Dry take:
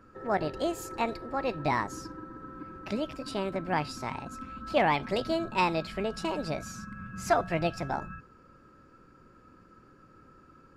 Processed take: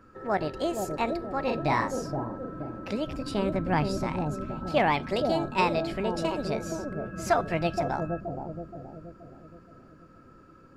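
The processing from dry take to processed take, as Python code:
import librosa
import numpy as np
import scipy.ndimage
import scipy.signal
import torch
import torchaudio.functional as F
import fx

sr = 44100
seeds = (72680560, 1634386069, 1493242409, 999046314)

y = fx.doubler(x, sr, ms=43.0, db=-4.0, at=(1.43, 2.25))
y = fx.low_shelf(y, sr, hz=180.0, db=12.0, at=(3.07, 4.04))
y = fx.echo_bbd(y, sr, ms=473, stages=2048, feedback_pct=49, wet_db=-3)
y = y * 10.0 ** (1.0 / 20.0)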